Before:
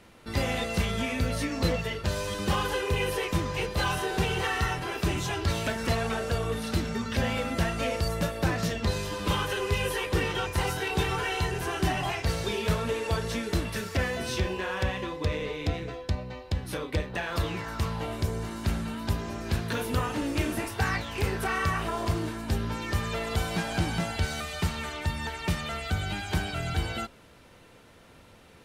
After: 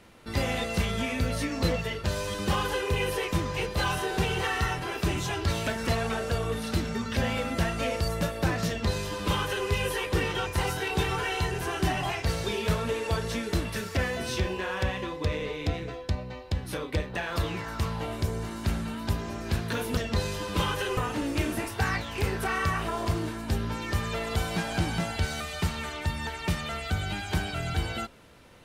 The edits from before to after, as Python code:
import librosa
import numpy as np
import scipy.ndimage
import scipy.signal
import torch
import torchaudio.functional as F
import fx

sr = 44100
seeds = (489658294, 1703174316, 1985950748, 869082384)

y = fx.edit(x, sr, fx.duplicate(start_s=8.68, length_s=1.0, to_s=19.97), tone=tone)